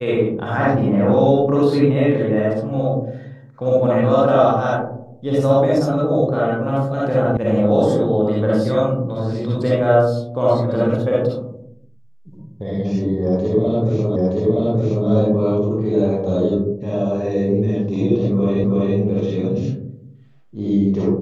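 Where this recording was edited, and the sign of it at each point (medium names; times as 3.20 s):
7.37 s: sound stops dead
14.16 s: repeat of the last 0.92 s
18.64 s: repeat of the last 0.33 s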